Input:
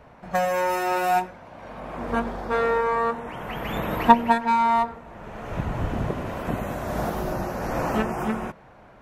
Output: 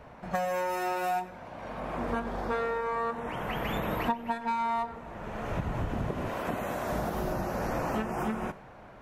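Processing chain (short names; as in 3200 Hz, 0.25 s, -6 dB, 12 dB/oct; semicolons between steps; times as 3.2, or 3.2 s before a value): 6.28–6.91 low shelf 180 Hz -11.5 dB; Schroeder reverb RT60 0.42 s, combs from 29 ms, DRR 17 dB; compressor 5:1, threshold -28 dBFS, peak gain reduction 18 dB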